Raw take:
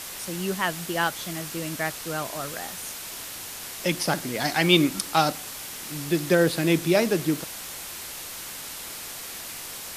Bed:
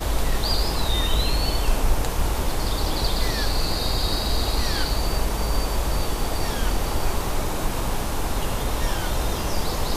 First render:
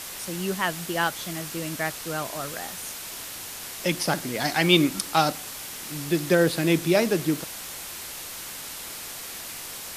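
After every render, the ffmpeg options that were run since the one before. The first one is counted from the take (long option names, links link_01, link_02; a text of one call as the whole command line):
ffmpeg -i in.wav -af anull out.wav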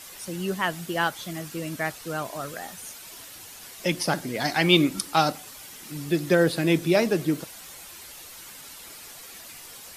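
ffmpeg -i in.wav -af "afftdn=noise_reduction=9:noise_floor=-38" out.wav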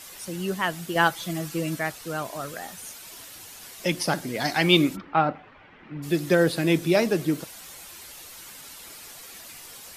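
ffmpeg -i in.wav -filter_complex "[0:a]asettb=1/sr,asplit=3[link_01][link_02][link_03];[link_01]atrim=end=0.954[link_04];[link_02]atrim=start=0.95:end=1.79,asetpts=PTS-STARTPTS,afade=type=in:duration=0.004:curve=qsin,afade=type=out:start_time=0.836:duration=0.004:curve=qsin,aecho=1:1:6:0.77,atrim=end_sample=37044[link_05];[link_03]atrim=start=1.786[link_06];[link_04][link_05]acrossfade=duration=0.004:curve1=hsin:curve2=qsin[link_07];[link_07][link_06]acrossfade=duration=0.004:curve1=qsin:curve2=hsin,asplit=3[link_08][link_09][link_10];[link_08]afade=type=out:start_time=4.95:duration=0.02[link_11];[link_09]lowpass=frequency=2300:width=0.5412,lowpass=frequency=2300:width=1.3066,afade=type=in:start_time=4.95:duration=0.02,afade=type=out:start_time=6.02:duration=0.02[link_12];[link_10]afade=type=in:start_time=6.02:duration=0.02[link_13];[link_11][link_12][link_13]amix=inputs=3:normalize=0" out.wav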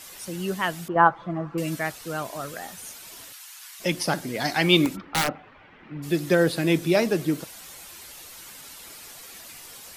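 ffmpeg -i in.wav -filter_complex "[0:a]asettb=1/sr,asplit=3[link_01][link_02][link_03];[link_01]atrim=end=0.884[link_04];[link_02]atrim=start=0.88:end=1.58,asetpts=PTS-STARTPTS,afade=type=in:duration=0.004:curve=qsin,afade=type=out:start_time=0.696:duration=0.004:curve=qsin,lowpass=frequency=1100:width_type=q:width=2.4[link_05];[link_03]atrim=start=1.576[link_06];[link_04][link_05]acrossfade=duration=0.004:curve1=hsin:curve2=qsin[link_07];[link_07][link_06]acrossfade=duration=0.004:curve1=qsin:curve2=hsin,asplit=3[link_08][link_09][link_10];[link_08]afade=type=out:start_time=3.32:duration=0.02[link_11];[link_09]highpass=frequency=1000:width=0.5412,highpass=frequency=1000:width=1.3066,afade=type=in:start_time=3.32:duration=0.02,afade=type=out:start_time=3.79:duration=0.02[link_12];[link_10]afade=type=in:start_time=3.79:duration=0.02[link_13];[link_11][link_12][link_13]amix=inputs=3:normalize=0,asplit=3[link_14][link_15][link_16];[link_14]afade=type=out:start_time=4.85:duration=0.02[link_17];[link_15]aeval=exprs='(mod(6.31*val(0)+1,2)-1)/6.31':channel_layout=same,afade=type=in:start_time=4.85:duration=0.02,afade=type=out:start_time=5.27:duration=0.02[link_18];[link_16]afade=type=in:start_time=5.27:duration=0.02[link_19];[link_17][link_18][link_19]amix=inputs=3:normalize=0" out.wav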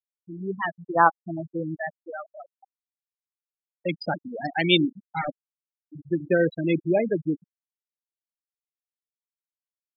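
ffmpeg -i in.wav -af "afftfilt=real='re*gte(hypot(re,im),0.178)':imag='im*gte(hypot(re,im),0.178)':win_size=1024:overlap=0.75,lowshelf=frequency=150:gain=-6" out.wav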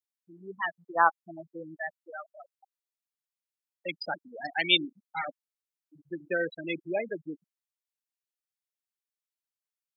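ffmpeg -i in.wav -af "highpass=frequency=1300:poles=1" out.wav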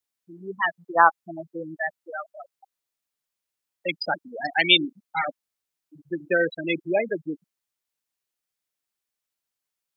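ffmpeg -i in.wav -af "volume=7.5dB,alimiter=limit=-3dB:level=0:latency=1" out.wav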